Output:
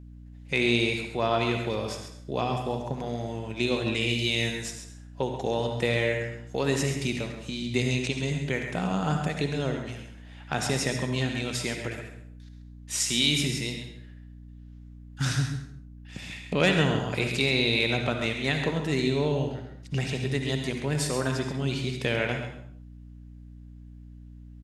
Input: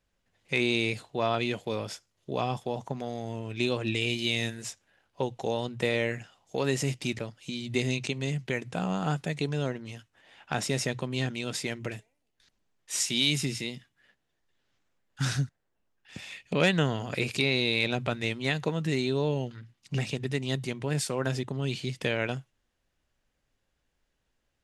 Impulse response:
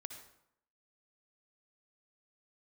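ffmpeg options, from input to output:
-filter_complex "[0:a]aecho=1:1:134:0.316[a];[1:a]atrim=start_sample=2205,afade=t=out:st=0.41:d=0.01,atrim=end_sample=18522[b];[a][b]afir=irnorm=-1:irlink=0,aeval=exprs='val(0)+0.00316*(sin(2*PI*60*n/s)+sin(2*PI*2*60*n/s)/2+sin(2*PI*3*60*n/s)/3+sin(2*PI*4*60*n/s)/4+sin(2*PI*5*60*n/s)/5)':c=same,volume=6dB"

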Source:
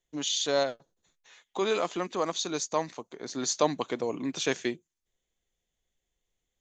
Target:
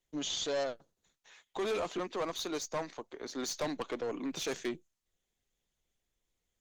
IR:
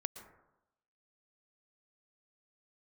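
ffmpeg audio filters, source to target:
-filter_complex "[0:a]asettb=1/sr,asplit=3[a][b][c];[a]atrim=end=1.984[d];[b]atrim=start=1.98:end=4.32,asetpts=PTS-STARTPTS,afade=t=in:d=0.004:c=qsin,afade=t=out:st=2.336:d=0.004:c=qsin,acrossover=split=210 7500:gain=0.0708 1 0.2[e][f][g];[e][f][g]amix=inputs=3:normalize=0[h];[c]atrim=start=4.316[i];[d][h]acrossfade=d=0.004:c1=hsin:c2=qsin[j];[j][i]acrossfade=d=0.004:c1=qsin:c2=hsin,aeval=exprs='(tanh(28.2*val(0)+0.2)-tanh(0.2))/28.2':c=same" -ar 48000 -c:a libopus -b:a 24k

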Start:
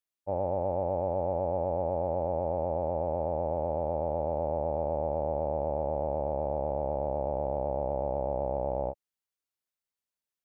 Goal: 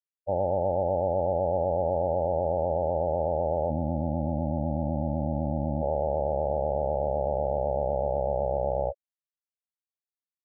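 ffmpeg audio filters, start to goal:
-filter_complex "[0:a]asplit=3[a][b][c];[a]afade=t=out:st=3.69:d=0.02[d];[b]equalizer=f=125:t=o:w=1:g=7,equalizer=f=250:t=o:w=1:g=10,equalizer=f=500:t=o:w=1:g=-11,equalizer=f=1k:t=o:w=1:g=-3,equalizer=f=2k:t=o:w=1:g=12,afade=t=in:st=3.69:d=0.02,afade=t=out:st=5.81:d=0.02[e];[c]afade=t=in:st=5.81:d=0.02[f];[d][e][f]amix=inputs=3:normalize=0,afftfilt=real='re*gte(hypot(re,im),0.0501)':imag='im*gte(hypot(re,im),0.0501)':win_size=1024:overlap=0.75,volume=4dB"

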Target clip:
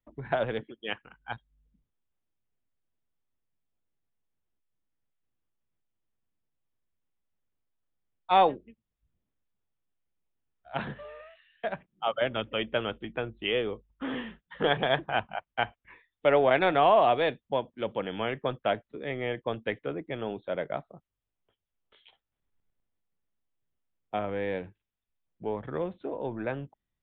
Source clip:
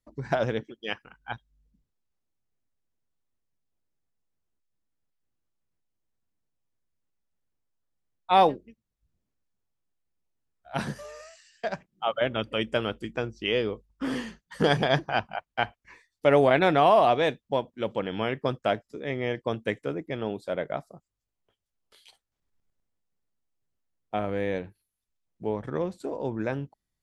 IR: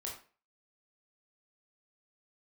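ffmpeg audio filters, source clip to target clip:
-filter_complex "[0:a]acrossover=split=340|2500[a][b][c];[a]asoftclip=type=tanh:threshold=-34dB[d];[d][b][c]amix=inputs=3:normalize=0,aresample=8000,aresample=44100,volume=-1.5dB"

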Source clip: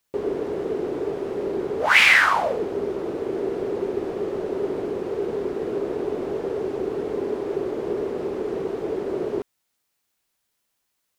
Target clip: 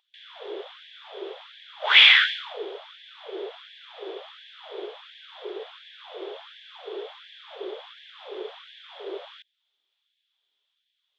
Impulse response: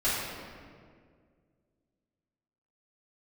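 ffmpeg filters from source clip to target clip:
-af "lowpass=f=3.4k:t=q:w=12,aeval=exprs='val(0)+0.0158*(sin(2*PI*50*n/s)+sin(2*PI*2*50*n/s)/2+sin(2*PI*3*50*n/s)/3+sin(2*PI*4*50*n/s)/4+sin(2*PI*5*50*n/s)/5)':c=same,afftfilt=real='re*gte(b*sr/1024,330*pow(1600/330,0.5+0.5*sin(2*PI*1.4*pts/sr)))':imag='im*gte(b*sr/1024,330*pow(1600/330,0.5+0.5*sin(2*PI*1.4*pts/sr)))':win_size=1024:overlap=0.75,volume=-6.5dB"

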